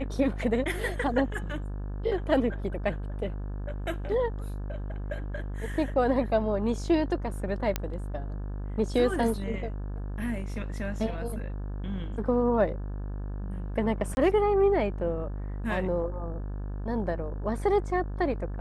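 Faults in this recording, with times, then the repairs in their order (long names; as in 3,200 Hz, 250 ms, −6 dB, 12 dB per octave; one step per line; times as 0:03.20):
mains buzz 50 Hz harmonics 35 −34 dBFS
0:07.76: click −12 dBFS
0:14.15–0:14.17: drop-out 21 ms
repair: click removal
hum removal 50 Hz, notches 35
repair the gap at 0:14.15, 21 ms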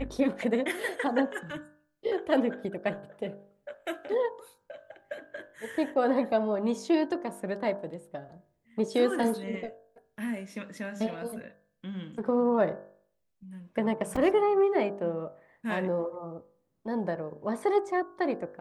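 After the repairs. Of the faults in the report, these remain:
none of them is left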